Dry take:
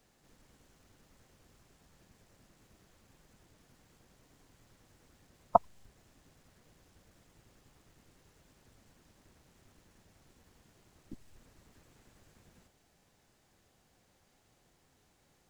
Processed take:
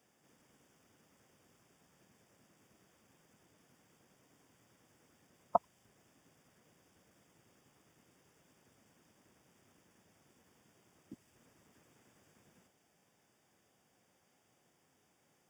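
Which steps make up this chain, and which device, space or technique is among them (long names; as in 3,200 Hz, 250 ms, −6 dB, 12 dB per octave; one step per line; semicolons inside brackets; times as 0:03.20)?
PA system with an anti-feedback notch (high-pass filter 140 Hz 12 dB per octave; Butterworth band-reject 4,100 Hz, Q 4.6; brickwall limiter −10.5 dBFS, peak gain reduction 4.5 dB)
level −2.5 dB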